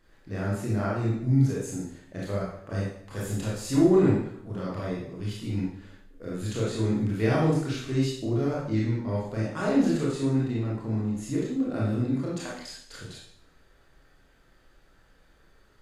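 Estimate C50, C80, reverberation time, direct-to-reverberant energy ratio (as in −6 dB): 0.0 dB, 5.0 dB, 0.70 s, −6.0 dB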